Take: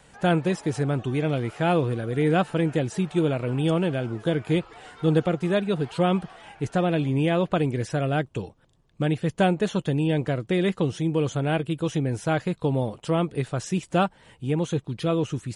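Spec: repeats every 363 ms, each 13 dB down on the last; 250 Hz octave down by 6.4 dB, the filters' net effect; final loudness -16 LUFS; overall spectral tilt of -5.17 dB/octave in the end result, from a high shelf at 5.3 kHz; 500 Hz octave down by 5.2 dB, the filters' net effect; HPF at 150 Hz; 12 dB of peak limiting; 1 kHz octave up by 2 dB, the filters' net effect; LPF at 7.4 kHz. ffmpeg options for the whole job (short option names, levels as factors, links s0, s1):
-af "highpass=150,lowpass=7400,equalizer=f=250:t=o:g=-7,equalizer=f=500:t=o:g=-6.5,equalizer=f=1000:t=o:g=6.5,highshelf=f=5300:g=8.5,alimiter=limit=0.106:level=0:latency=1,aecho=1:1:363|726|1089:0.224|0.0493|0.0108,volume=6.31"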